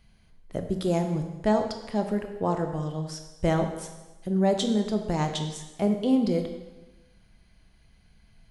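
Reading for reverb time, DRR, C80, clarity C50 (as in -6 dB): 1.1 s, 5.0 dB, 9.0 dB, 7.0 dB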